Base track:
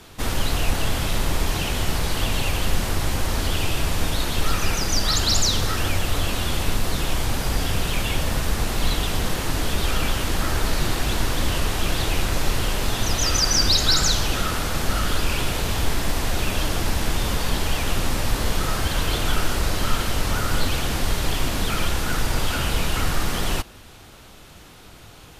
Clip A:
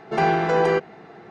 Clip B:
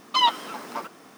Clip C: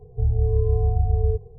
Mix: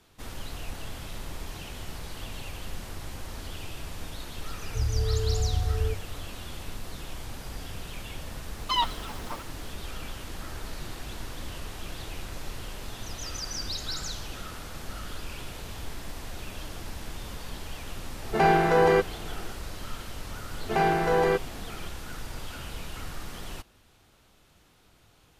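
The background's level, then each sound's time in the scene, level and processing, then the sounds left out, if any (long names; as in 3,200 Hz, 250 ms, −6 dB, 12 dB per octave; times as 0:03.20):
base track −15.5 dB
0:04.57: mix in C −6.5 dB
0:08.55: mix in B −6 dB
0:18.22: mix in A −1 dB
0:20.58: mix in A −4 dB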